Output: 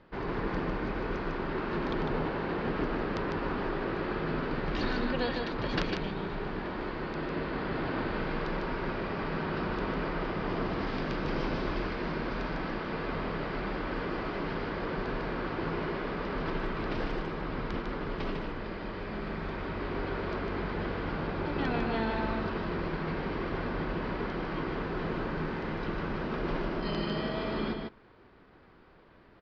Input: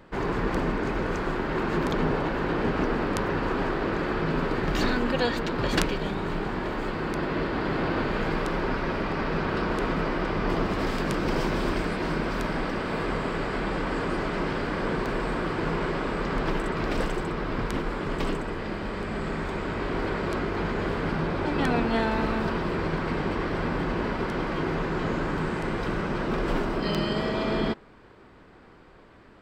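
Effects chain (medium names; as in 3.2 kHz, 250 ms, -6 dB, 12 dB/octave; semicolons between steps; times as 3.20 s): steep low-pass 5.2 kHz 36 dB/octave; on a send: delay 151 ms -4.5 dB; on the sum: trim -7 dB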